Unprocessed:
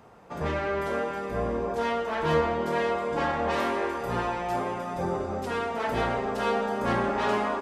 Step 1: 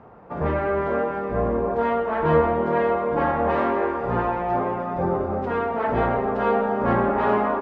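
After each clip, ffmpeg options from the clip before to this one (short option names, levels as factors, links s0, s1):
-af "lowpass=1500,volume=2"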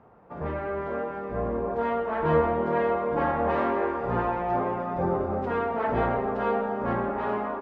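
-af "dynaudnorm=f=290:g=11:m=2,volume=0.398"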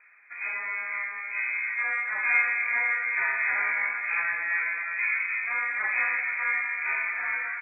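-af "lowpass=f=2200:t=q:w=0.5098,lowpass=f=2200:t=q:w=0.6013,lowpass=f=2200:t=q:w=0.9,lowpass=f=2200:t=q:w=2.563,afreqshift=-2600,volume=0.841"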